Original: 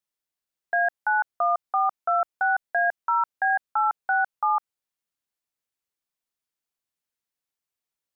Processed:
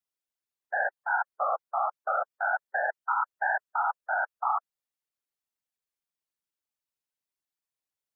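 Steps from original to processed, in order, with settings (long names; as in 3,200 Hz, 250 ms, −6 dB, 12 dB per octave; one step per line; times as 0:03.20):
gate on every frequency bin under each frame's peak −20 dB strong
random phases in short frames
level −5 dB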